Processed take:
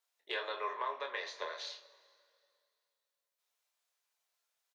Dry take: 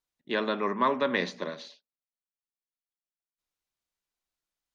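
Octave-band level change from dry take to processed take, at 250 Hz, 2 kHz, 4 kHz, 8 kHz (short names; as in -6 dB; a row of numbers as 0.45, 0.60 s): -28.0 dB, -8.0 dB, -4.5 dB, n/a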